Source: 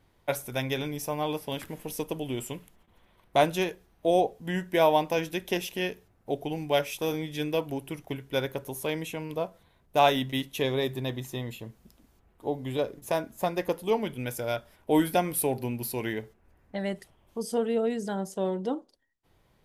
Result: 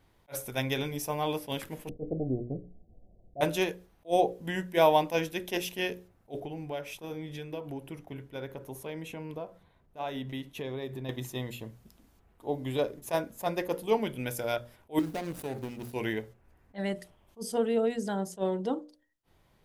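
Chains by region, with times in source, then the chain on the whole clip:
0:01.89–0:03.41: Chebyshev low-pass filter 730 Hz, order 6 + spectral tilt −2 dB per octave
0:06.40–0:11.09: high-shelf EQ 2,900 Hz −9.5 dB + downward compressor 3 to 1, threshold −35 dBFS
0:14.99–0:15.93: running median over 41 samples + high-shelf EQ 3,600 Hz +7.5 dB + downward compressor 5 to 1, threshold −30 dBFS
whole clip: mains-hum notches 60/120/180/240/300/360/420/480/540/600 Hz; level that may rise only so fast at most 370 dB per second

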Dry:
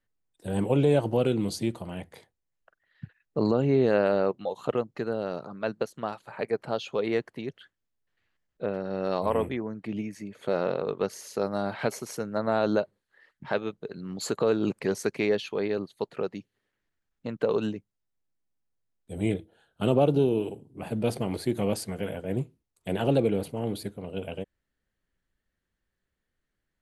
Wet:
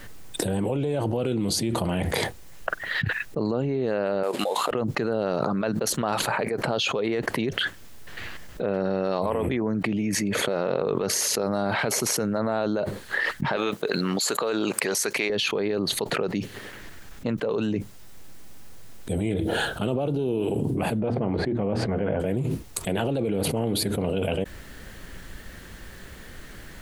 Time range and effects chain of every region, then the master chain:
0:04.23–0:04.71: variable-slope delta modulation 64 kbit/s + high-pass filter 420 Hz + parametric band 5,900 Hz −9 dB 0.24 octaves
0:13.56–0:15.30: high-pass filter 1,000 Hz 6 dB per octave + high-shelf EQ 9,800 Hz +5.5 dB
0:21.00–0:22.20: low-pass filter 1,500 Hz + mains-hum notches 60/120/180/240 Hz
whole clip: brickwall limiter −19 dBFS; envelope flattener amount 100%

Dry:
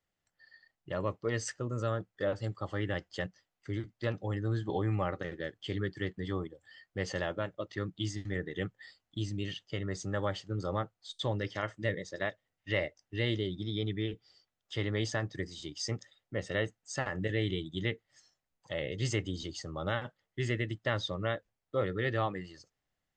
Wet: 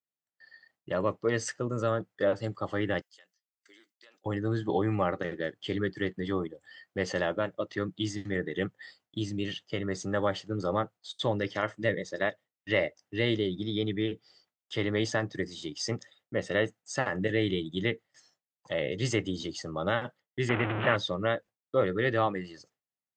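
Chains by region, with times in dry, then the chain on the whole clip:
0:03.01–0:04.26: high-pass filter 230 Hz 24 dB per octave + first difference + downward compressor 12 to 1, threshold −56 dBFS
0:20.49–0:20.96: linear delta modulator 16 kbit/s, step −27 dBFS + parametric band 1,400 Hz +4 dB 0.41 octaves
whole clip: high-pass filter 150 Hz 12 dB per octave; high-shelf EQ 2,300 Hz −4 dB; noise gate with hold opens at −59 dBFS; level +6 dB

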